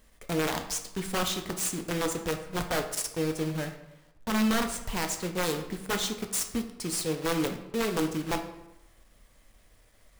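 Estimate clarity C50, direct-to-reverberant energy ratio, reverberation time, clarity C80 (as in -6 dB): 9.0 dB, 5.0 dB, 0.90 s, 12.0 dB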